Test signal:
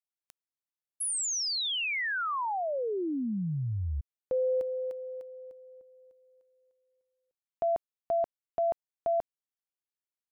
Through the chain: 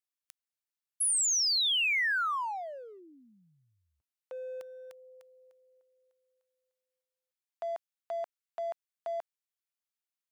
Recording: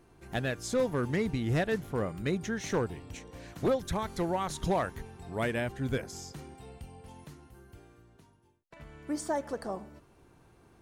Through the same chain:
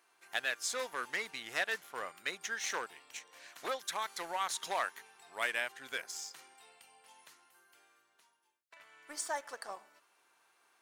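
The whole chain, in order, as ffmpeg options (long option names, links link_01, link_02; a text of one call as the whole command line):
ffmpeg -i in.wav -filter_complex "[0:a]highpass=1200,asplit=2[link_01][link_02];[link_02]aeval=exprs='sgn(val(0))*max(abs(val(0))-0.00355,0)':channel_layout=same,volume=-4.5dB[link_03];[link_01][link_03]amix=inputs=2:normalize=0" out.wav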